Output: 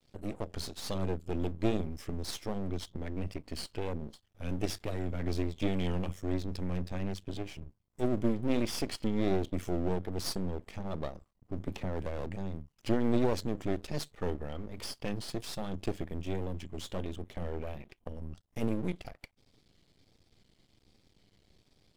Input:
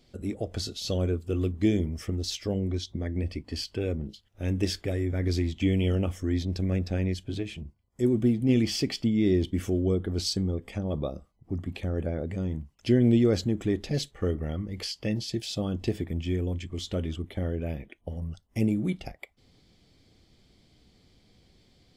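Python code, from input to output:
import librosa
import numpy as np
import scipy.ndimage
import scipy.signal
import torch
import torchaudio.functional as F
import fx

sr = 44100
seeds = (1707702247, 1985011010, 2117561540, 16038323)

y = fx.vibrato(x, sr, rate_hz=1.3, depth_cents=79.0)
y = np.maximum(y, 0.0)
y = fx.band_squash(y, sr, depth_pct=100, at=(11.67, 12.26))
y = F.gain(torch.from_numpy(y), -2.0).numpy()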